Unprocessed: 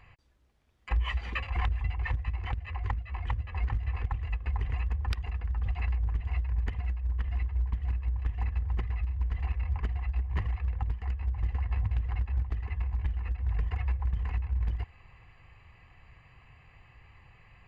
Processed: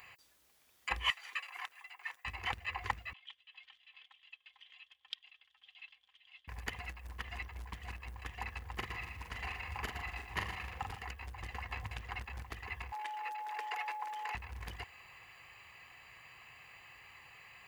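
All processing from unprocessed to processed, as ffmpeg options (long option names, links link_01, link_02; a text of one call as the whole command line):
ffmpeg -i in.wav -filter_complex "[0:a]asettb=1/sr,asplit=3[link_01][link_02][link_03];[link_01]atrim=end=1.104[link_04];[link_02]atrim=start=1.1:end=2.25,asetpts=PTS-STARTPTS,afade=type=in:duration=0.004:curve=qsin,afade=type=out:start_time=1.146:duration=0.004:curve=qsin,highpass=1400,equalizer=frequency=3400:width_type=o:width=2.9:gain=-11.5[link_05];[link_03]atrim=start=2.246[link_06];[link_04][link_05]acrossfade=duration=0.004:curve1=hsin:curve2=qsin[link_07];[link_07][link_06]acrossfade=duration=0.004:curve1=qsin:curve2=hsin,asettb=1/sr,asplit=3[link_08][link_09][link_10];[link_08]atrim=end=3.134[link_11];[link_09]atrim=start=3.13:end=6.48,asetpts=PTS-STARTPTS,afade=type=in:duration=0.004:curve=qsin,afade=type=out:start_time=3.346:duration=0.004:curve=qsin,bandpass=frequency=3300:width_type=q:width=11,aecho=1:1:3.8:0.51,atrim=end_sample=147735[link_12];[link_10]atrim=start=6.476[link_13];[link_11][link_12]acrossfade=duration=0.004:curve1=hsin:curve2=qsin[link_14];[link_14][link_13]acrossfade=duration=0.004:curve1=qsin:curve2=hsin,asettb=1/sr,asplit=3[link_15][link_16][link_17];[link_15]atrim=end=8.784[link_18];[link_16]atrim=start=8.78:end=11.02,asetpts=PTS-STARTPTS,afade=type=in:duration=0.004:curve=qsin,afade=type=out:start_time=2.236:duration=0.004:curve=qsin,asplit=2[link_19][link_20];[link_20]adelay=42,volume=-5dB[link_21];[link_19][link_21]amix=inputs=2:normalize=0,atrim=end_sample=98784,aecho=1:1:117|234|351|468|585:0.355|0.156|0.0687|0.0302|0.0133,atrim=end_sample=98784[link_22];[link_17]atrim=start=11.016[link_23];[link_18][link_22]acrossfade=duration=0.004:curve1=hsin:curve2=qsin[link_24];[link_24][link_23]acrossfade=duration=0.004:curve1=qsin:curve2=hsin,asettb=1/sr,asplit=3[link_25][link_26][link_27];[link_25]atrim=end=12.924[link_28];[link_26]atrim=start=12.92:end=14.35,asetpts=PTS-STARTPTS,afade=type=in:duration=0.004:curve=qsin,afade=type=out:start_time=1.426:duration=0.004:curve=qsin,aeval=exprs='val(0)+0.00891*sin(2*PI*850*n/s)':channel_layout=same,highpass=frequency=410:width=0.5412,highpass=frequency=410:width=1.3066[link_29];[link_27]atrim=start=14.346[link_30];[link_28][link_29]acrossfade=duration=0.004:curve1=hsin:curve2=qsin[link_31];[link_31][link_30]acrossfade=duration=0.004:curve1=qsin:curve2=hsin,highpass=frequency=680:poles=1,aemphasis=mode=production:type=75fm,volume=4dB" out.wav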